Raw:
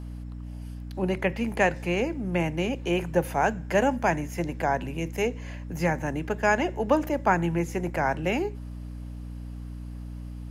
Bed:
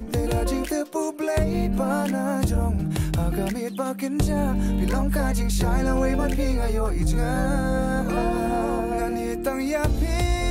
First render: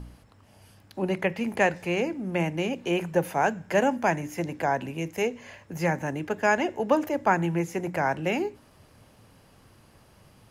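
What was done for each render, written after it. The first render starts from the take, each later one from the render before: de-hum 60 Hz, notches 5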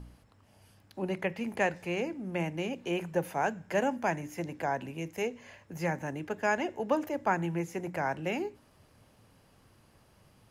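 gain -6 dB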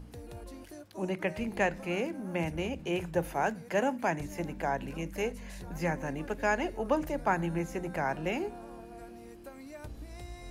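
add bed -22 dB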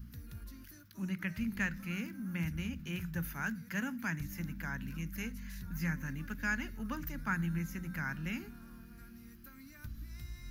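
EQ curve 230 Hz 0 dB, 370 Hz -19 dB, 730 Hz -25 dB, 1400 Hz 0 dB, 2700 Hz -6 dB, 6000 Hz -1 dB, 8500 Hz -11 dB, 14000 Hz +11 dB

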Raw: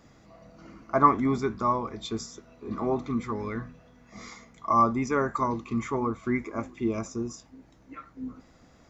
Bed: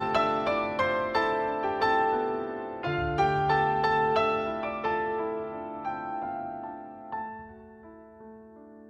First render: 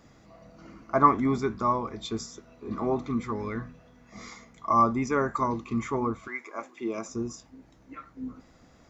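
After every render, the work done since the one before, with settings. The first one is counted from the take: 6.26–7.08 HPF 950 Hz -> 240 Hz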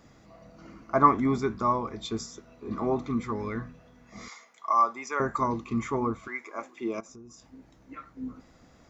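4.28–5.2 HPF 710 Hz; 7–7.49 compressor 4:1, threshold -48 dBFS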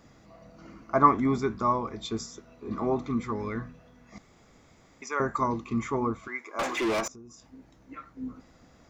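4.18–5.02 room tone; 6.59–7.08 overdrive pedal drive 35 dB, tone 4100 Hz, clips at -20.5 dBFS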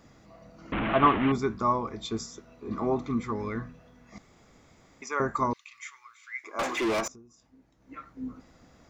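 0.72–1.32 delta modulation 16 kbps, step -22.5 dBFS; 5.53–6.44 inverse Chebyshev high-pass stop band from 680 Hz, stop band 50 dB; 7.08–7.98 dip -9 dB, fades 0.21 s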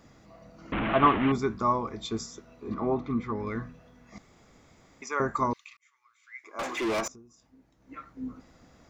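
2.74–3.47 air absorption 170 m; 5.77–7.09 fade in linear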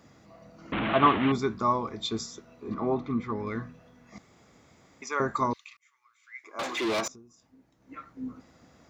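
HPF 73 Hz; dynamic EQ 3900 Hz, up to +7 dB, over -54 dBFS, Q 2.1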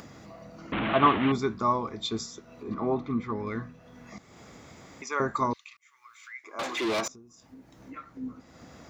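upward compressor, threshold -39 dBFS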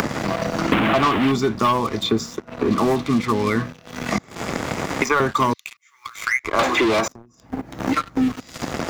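sample leveller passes 3; three-band squash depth 100%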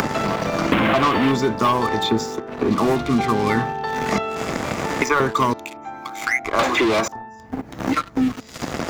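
add bed -0.5 dB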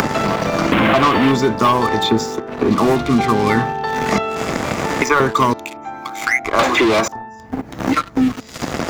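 gain +4 dB; limiter -1 dBFS, peak gain reduction 2.5 dB

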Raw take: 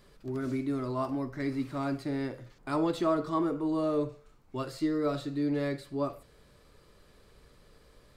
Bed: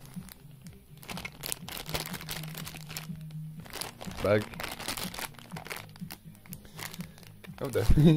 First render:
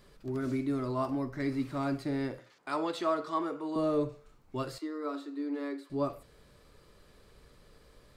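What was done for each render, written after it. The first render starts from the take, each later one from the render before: 2.39–3.76 weighting filter A; 4.78–5.9 rippled Chebyshev high-pass 270 Hz, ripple 9 dB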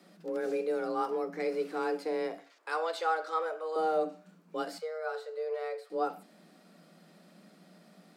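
frequency shift +160 Hz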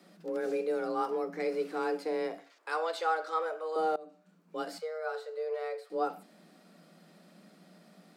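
3.96–4.75 fade in, from -23 dB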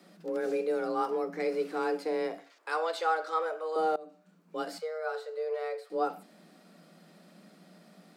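gain +1.5 dB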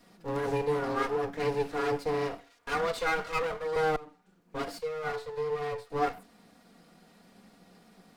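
minimum comb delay 4.2 ms; in parallel at -9 dB: crossover distortion -47 dBFS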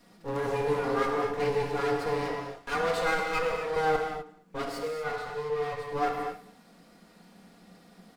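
outdoor echo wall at 37 m, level -23 dB; non-linear reverb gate 0.28 s flat, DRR 2 dB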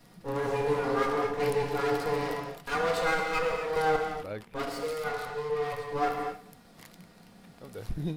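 add bed -13 dB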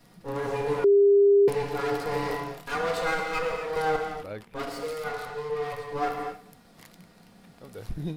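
0.84–1.48 bleep 402 Hz -14.5 dBFS; 2.08–2.72 doubler 31 ms -2.5 dB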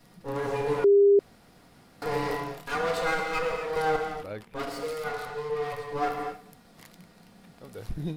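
1.19–2.02 room tone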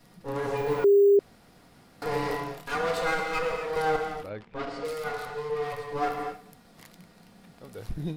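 0.57–1.17 careless resampling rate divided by 2×, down none, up hold; 4.29–4.85 air absorption 120 m

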